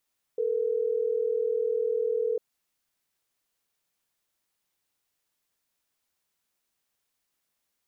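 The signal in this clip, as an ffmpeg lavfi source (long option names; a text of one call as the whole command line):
ffmpeg -f lavfi -i "aevalsrc='0.0447*(sin(2*PI*440*t)+sin(2*PI*480*t))*clip(min(mod(t,6),2-mod(t,6))/0.005,0,1)':duration=3.12:sample_rate=44100" out.wav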